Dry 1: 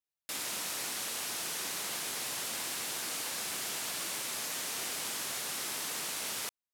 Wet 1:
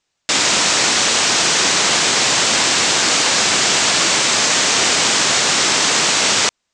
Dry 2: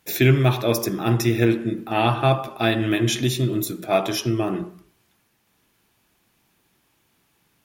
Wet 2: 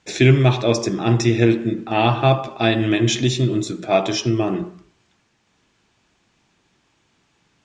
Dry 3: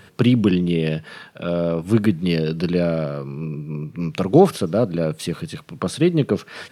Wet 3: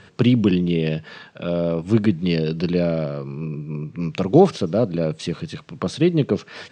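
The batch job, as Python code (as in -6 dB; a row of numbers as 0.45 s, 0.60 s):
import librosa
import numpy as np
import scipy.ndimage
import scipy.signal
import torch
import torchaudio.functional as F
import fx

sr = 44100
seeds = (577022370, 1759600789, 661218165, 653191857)

y = scipy.signal.sosfilt(scipy.signal.butter(8, 7800.0, 'lowpass', fs=sr, output='sos'), x)
y = fx.dynamic_eq(y, sr, hz=1400.0, q=2.3, threshold_db=-42.0, ratio=4.0, max_db=-4)
y = librosa.util.normalize(y) * 10.0 ** (-1.5 / 20.0)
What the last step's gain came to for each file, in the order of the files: +24.0 dB, +3.0 dB, -0.5 dB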